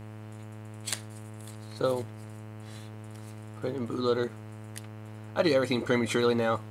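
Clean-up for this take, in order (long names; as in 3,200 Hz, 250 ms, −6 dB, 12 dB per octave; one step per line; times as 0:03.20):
hum removal 107.9 Hz, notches 28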